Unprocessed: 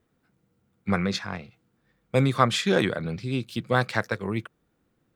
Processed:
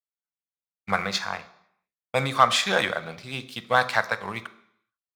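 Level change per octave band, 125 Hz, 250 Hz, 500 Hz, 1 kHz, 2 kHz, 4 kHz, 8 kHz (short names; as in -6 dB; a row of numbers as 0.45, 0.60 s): -9.0, -9.0, -1.5, +5.0, +4.5, +4.5, +4.0 dB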